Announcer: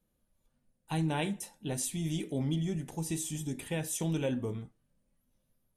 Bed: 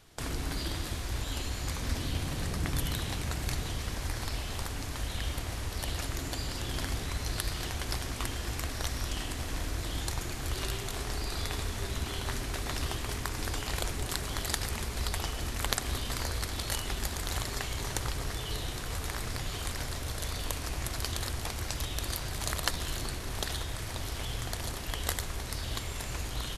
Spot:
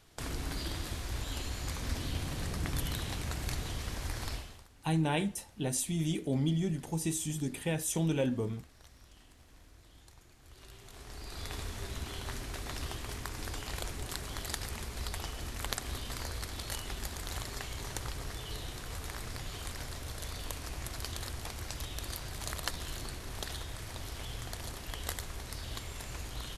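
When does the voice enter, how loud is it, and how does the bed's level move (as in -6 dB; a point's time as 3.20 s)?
3.95 s, +1.5 dB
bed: 4.33 s -3 dB
4.68 s -23.5 dB
10.40 s -23.5 dB
11.54 s -5.5 dB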